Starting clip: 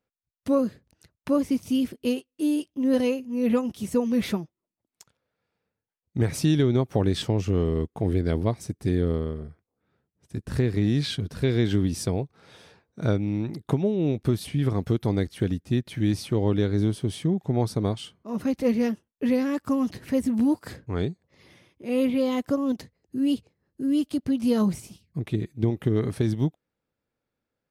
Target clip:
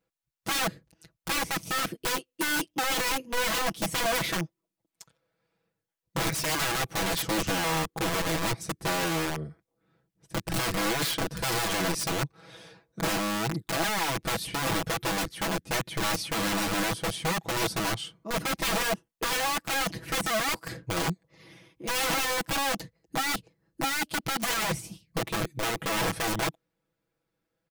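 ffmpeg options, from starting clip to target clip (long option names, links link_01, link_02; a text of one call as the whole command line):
ffmpeg -i in.wav -af "aeval=exprs='(mod(17.8*val(0)+1,2)-1)/17.8':channel_layout=same,aecho=1:1:6.1:0.85" out.wav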